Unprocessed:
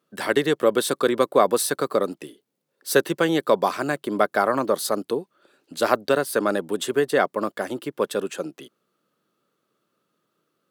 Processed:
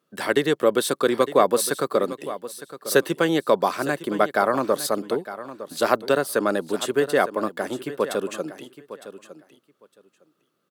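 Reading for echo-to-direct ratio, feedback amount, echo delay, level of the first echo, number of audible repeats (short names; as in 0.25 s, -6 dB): -14.0 dB, 16%, 0.909 s, -14.0 dB, 2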